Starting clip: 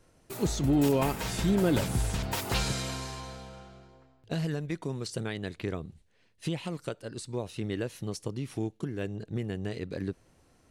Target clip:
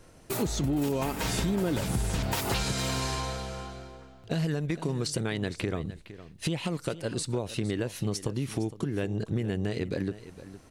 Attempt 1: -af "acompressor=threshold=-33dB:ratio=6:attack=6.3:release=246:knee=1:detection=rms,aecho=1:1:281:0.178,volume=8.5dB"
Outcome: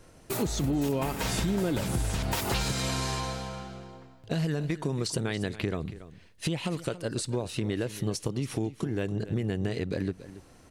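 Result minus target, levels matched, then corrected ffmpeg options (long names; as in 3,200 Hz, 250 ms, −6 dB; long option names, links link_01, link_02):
echo 180 ms early
-af "acompressor=threshold=-33dB:ratio=6:attack=6.3:release=246:knee=1:detection=rms,aecho=1:1:461:0.178,volume=8.5dB"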